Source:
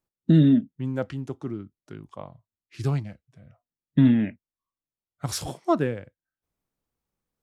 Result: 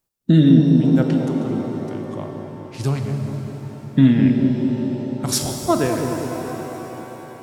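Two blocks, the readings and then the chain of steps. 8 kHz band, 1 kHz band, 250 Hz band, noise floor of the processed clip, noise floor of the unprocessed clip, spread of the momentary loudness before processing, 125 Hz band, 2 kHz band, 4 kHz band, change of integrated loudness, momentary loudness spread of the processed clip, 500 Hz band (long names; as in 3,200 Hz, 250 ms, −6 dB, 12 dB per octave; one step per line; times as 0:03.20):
+11.5 dB, +7.0 dB, +7.5 dB, −38 dBFS, below −85 dBFS, 23 LU, +7.0 dB, +7.0 dB, +9.5 dB, +5.5 dB, 18 LU, +8.0 dB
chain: high-shelf EQ 4,100 Hz +8.5 dB
delay with a low-pass on its return 207 ms, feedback 65%, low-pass 600 Hz, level −4 dB
reverb with rising layers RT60 3.8 s, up +7 semitones, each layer −8 dB, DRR 4.5 dB
level +3.5 dB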